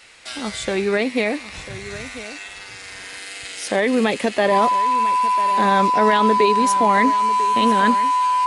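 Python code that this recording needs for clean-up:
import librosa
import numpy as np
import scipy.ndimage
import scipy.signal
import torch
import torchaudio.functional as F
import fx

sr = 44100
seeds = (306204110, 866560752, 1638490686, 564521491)

y = fx.notch(x, sr, hz=1000.0, q=30.0)
y = fx.fix_echo_inverse(y, sr, delay_ms=996, level_db=-15.0)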